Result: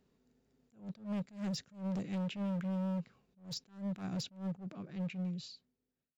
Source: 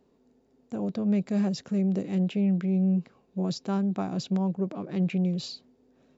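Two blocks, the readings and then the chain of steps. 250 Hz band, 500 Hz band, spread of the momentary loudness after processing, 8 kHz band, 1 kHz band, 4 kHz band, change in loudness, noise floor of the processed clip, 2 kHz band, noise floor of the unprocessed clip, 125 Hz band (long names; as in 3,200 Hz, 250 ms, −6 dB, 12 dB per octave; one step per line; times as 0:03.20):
−12.5 dB, −13.0 dB, 13 LU, can't be measured, −10.5 dB, −5.5 dB, −12.0 dB, below −85 dBFS, −7.0 dB, −66 dBFS, −11.5 dB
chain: fade-out on the ending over 1.85 s
flat-topped bell 500 Hz −8 dB 2.4 octaves
gain into a clipping stage and back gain 31 dB
level that may rise only so fast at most 170 dB per second
level −3 dB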